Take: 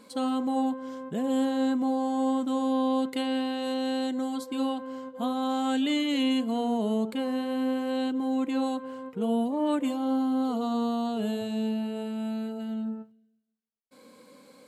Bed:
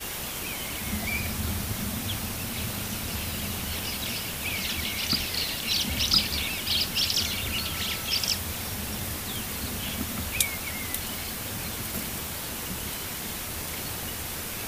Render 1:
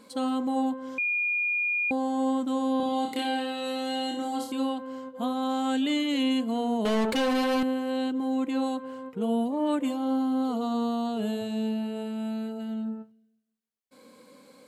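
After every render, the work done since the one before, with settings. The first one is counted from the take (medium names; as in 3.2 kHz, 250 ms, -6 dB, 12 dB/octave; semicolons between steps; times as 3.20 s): 0.98–1.91 s: bleep 2.43 kHz -24 dBFS; 2.77–4.52 s: flutter echo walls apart 5 m, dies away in 0.57 s; 6.85–7.63 s: overdrive pedal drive 26 dB, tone 6.8 kHz, clips at -18.5 dBFS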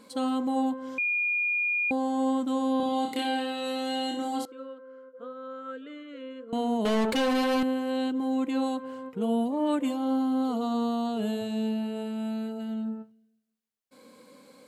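4.45–6.53 s: two resonant band-passes 810 Hz, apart 1.5 oct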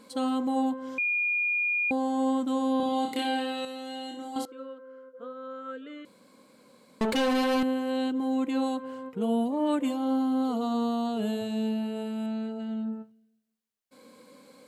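3.65–4.36 s: gain -7.5 dB; 6.05–7.01 s: room tone; 12.26–12.93 s: distance through air 67 m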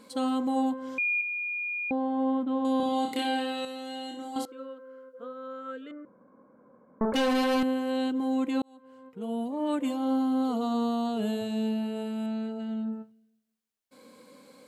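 1.21–2.65 s: distance through air 420 m; 5.91–7.14 s: steep low-pass 1.5 kHz; 8.62–10.05 s: fade in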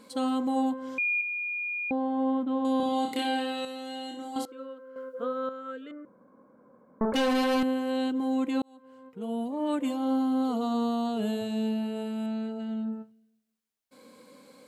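4.96–5.49 s: gain +9 dB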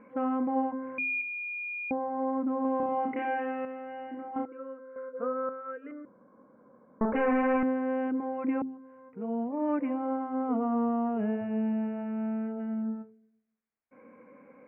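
steep low-pass 2.4 kHz 72 dB/octave; de-hum 87.51 Hz, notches 5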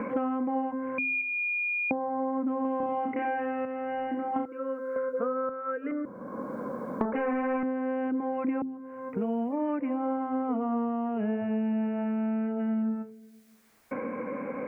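three bands compressed up and down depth 100%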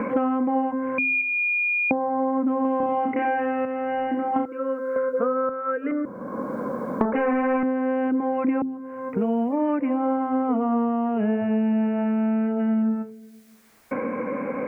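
trim +6.5 dB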